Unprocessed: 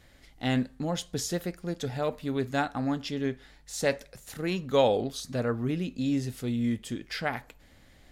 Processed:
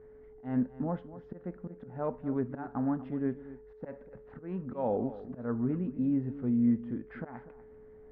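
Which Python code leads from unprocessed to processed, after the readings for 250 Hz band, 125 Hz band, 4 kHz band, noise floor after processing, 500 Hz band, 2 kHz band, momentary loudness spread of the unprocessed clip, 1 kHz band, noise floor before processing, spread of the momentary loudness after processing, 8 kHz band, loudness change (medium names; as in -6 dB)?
-0.5 dB, -4.5 dB, under -35 dB, -53 dBFS, -7.5 dB, -16.5 dB, 9 LU, -8.0 dB, -58 dBFS, 17 LU, under -40 dB, -3.0 dB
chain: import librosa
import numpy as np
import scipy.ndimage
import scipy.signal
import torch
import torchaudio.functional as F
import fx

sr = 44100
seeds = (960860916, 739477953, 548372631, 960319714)

p1 = fx.auto_swell(x, sr, attack_ms=212.0)
p2 = fx.small_body(p1, sr, hz=(230.0, 920.0), ring_ms=45, db=7)
p3 = p2 + fx.echo_single(p2, sr, ms=243, db=-15.5, dry=0)
p4 = p3 + 10.0 ** (-47.0 / 20.0) * np.sin(2.0 * np.pi * 430.0 * np.arange(len(p3)) / sr)
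p5 = scipy.signal.sosfilt(scipy.signal.butter(4, 1500.0, 'lowpass', fs=sr, output='sos'), p4)
y = p5 * librosa.db_to_amplitude(-4.0)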